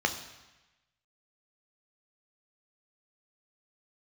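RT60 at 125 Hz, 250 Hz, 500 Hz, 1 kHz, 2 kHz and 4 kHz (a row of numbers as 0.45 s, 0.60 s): 1.2 s, 1.0 s, 1.0 s, 1.1 s, 1.2 s, 1.1 s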